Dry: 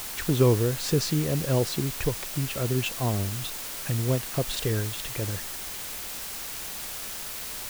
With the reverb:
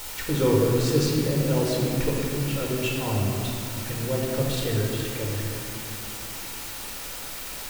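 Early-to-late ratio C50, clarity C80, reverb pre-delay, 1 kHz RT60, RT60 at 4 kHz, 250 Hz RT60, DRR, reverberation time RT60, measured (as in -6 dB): 0.0 dB, 1.5 dB, 3 ms, 2.7 s, 1.5 s, 3.9 s, -2.5 dB, 2.9 s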